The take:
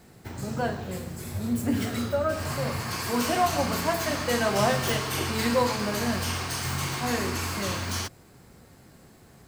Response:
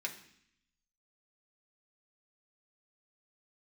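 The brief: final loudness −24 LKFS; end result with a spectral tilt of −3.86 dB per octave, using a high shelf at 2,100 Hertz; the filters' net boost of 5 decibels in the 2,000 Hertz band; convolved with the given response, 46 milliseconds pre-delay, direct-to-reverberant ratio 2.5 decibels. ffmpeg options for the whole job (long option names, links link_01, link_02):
-filter_complex "[0:a]equalizer=frequency=2000:width_type=o:gain=4,highshelf=frequency=2100:gain=4,asplit=2[link_01][link_02];[1:a]atrim=start_sample=2205,adelay=46[link_03];[link_02][link_03]afir=irnorm=-1:irlink=0,volume=-4dB[link_04];[link_01][link_04]amix=inputs=2:normalize=0"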